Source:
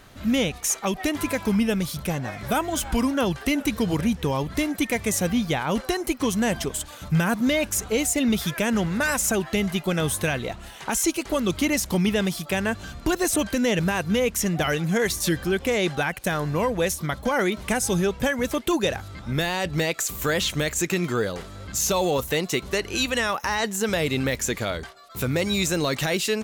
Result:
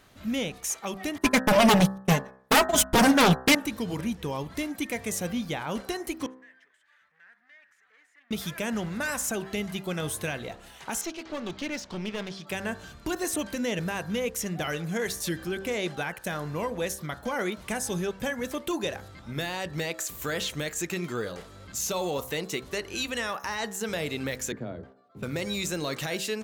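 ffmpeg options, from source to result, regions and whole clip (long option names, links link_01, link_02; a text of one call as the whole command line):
ffmpeg -i in.wav -filter_complex "[0:a]asettb=1/sr,asplit=3[link_01][link_02][link_03];[link_01]atrim=end=1.184[link_04];[link_02]atrim=start=1.18:end=3.55,asetpts=PTS-STARTPTS,afade=type=in:duration=0.004:curve=qsin,afade=type=out:start_time=2.366:duration=0.004:curve=qsin,agate=range=-51dB:threshold=-26dB:ratio=16:release=100:detection=peak,aecho=1:1:4.7:0.9,atrim=end_sample=104517,aeval=exprs='0.422*sin(PI/2*3.98*val(0)/0.422)':channel_layout=same[link_05];[link_03]atrim=start=3.546[link_06];[link_04][link_05]acrossfade=duration=0.004:curve1=hsin:curve2=qsin[link_07];[link_07][link_06]acrossfade=duration=0.004:curve1=qsin:curve2=hsin,asettb=1/sr,asplit=3[link_08][link_09][link_10];[link_08]atrim=end=6.264[link_11];[link_09]atrim=start=6.26:end=8.31,asetpts=PTS-STARTPTS,afade=type=in:duration=0.004:curve=qsin,afade=type=out:start_time=2.046:duration=0.004:curve=qsin,volume=25.5dB,asoftclip=hard,volume=-25.5dB,acompressor=threshold=-34dB:ratio=6:attack=3.2:release=140:knee=1:detection=peak,bandpass=frequency=1800:width_type=q:width=7.5[link_12];[link_10]atrim=start=8.306[link_13];[link_11][link_12]acrossfade=duration=0.004:curve1=hsin:curve2=qsin[link_14];[link_14][link_13]acrossfade=duration=0.004:curve1=qsin:curve2=hsin,asettb=1/sr,asplit=3[link_15][link_16][link_17];[link_15]atrim=end=11.014[link_18];[link_16]atrim=start=11.01:end=12.47,asetpts=PTS-STARTPTS,afade=type=in:duration=0.004:curve=qsin,afade=type=out:start_time=1.456:duration=0.004:curve=qsin,lowpass=frequency=5700:width=0.5412,lowpass=frequency=5700:width=1.3066,lowshelf=frequency=140:gain=-8,aeval=exprs='clip(val(0),-1,0.0299)':channel_layout=same[link_19];[link_17]atrim=start=12.466[link_20];[link_18][link_19]acrossfade=duration=0.004:curve1=hsin:curve2=qsin[link_21];[link_21][link_20]acrossfade=duration=0.004:curve1=qsin:curve2=hsin,asettb=1/sr,asplit=3[link_22][link_23][link_24];[link_22]atrim=end=24.524[link_25];[link_23]atrim=start=24.52:end=25.23,asetpts=PTS-STARTPTS,afade=type=in:duration=0.004:curve=qsin,afade=type=out:start_time=0.706:duration=0.004:curve=qsin,bandpass=frequency=290:width_type=q:width=0.79,lowshelf=frequency=210:gain=10.5,afreqshift=13[link_26];[link_24]atrim=start=25.226[link_27];[link_25][link_26]acrossfade=duration=0.004:curve1=hsin:curve2=qsin[link_28];[link_28][link_27]acrossfade=duration=0.004:curve1=qsin:curve2=hsin,lowshelf=frequency=77:gain=-7,bandreject=frequency=64.38:width_type=h:width=4,bandreject=frequency=128.76:width_type=h:width=4,bandreject=frequency=193.14:width_type=h:width=4,bandreject=frequency=257.52:width_type=h:width=4,bandreject=frequency=321.9:width_type=h:width=4,bandreject=frequency=386.28:width_type=h:width=4,bandreject=frequency=450.66:width_type=h:width=4,bandreject=frequency=515.04:width_type=h:width=4,bandreject=frequency=579.42:width_type=h:width=4,bandreject=frequency=643.8:width_type=h:width=4,bandreject=frequency=708.18:width_type=h:width=4,bandreject=frequency=772.56:width_type=h:width=4,bandreject=frequency=836.94:width_type=h:width=4,bandreject=frequency=901.32:width_type=h:width=4,bandreject=frequency=965.7:width_type=h:width=4,bandreject=frequency=1030.08:width_type=h:width=4,bandreject=frequency=1094.46:width_type=h:width=4,bandreject=frequency=1158.84:width_type=h:width=4,bandreject=frequency=1223.22:width_type=h:width=4,bandreject=frequency=1287.6:width_type=h:width=4,bandreject=frequency=1351.98:width_type=h:width=4,bandreject=frequency=1416.36:width_type=h:width=4,bandreject=frequency=1480.74:width_type=h:width=4,bandreject=frequency=1545.12:width_type=h:width=4,bandreject=frequency=1609.5:width_type=h:width=4,bandreject=frequency=1673.88:width_type=h:width=4,bandreject=frequency=1738.26:width_type=h:width=4,bandreject=frequency=1802.64:width_type=h:width=4,bandreject=frequency=1867.02:width_type=h:width=4,volume=-6.5dB" out.wav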